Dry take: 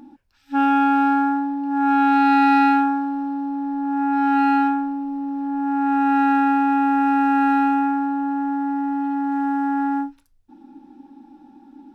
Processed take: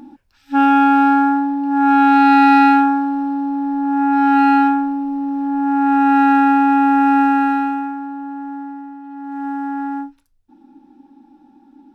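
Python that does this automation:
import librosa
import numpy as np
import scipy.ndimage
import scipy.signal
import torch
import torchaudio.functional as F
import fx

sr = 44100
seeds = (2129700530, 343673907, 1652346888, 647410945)

y = fx.gain(x, sr, db=fx.line((7.2, 5.0), (7.95, -5.0), (8.59, -5.0), (9.02, -12.0), (9.47, -2.0)))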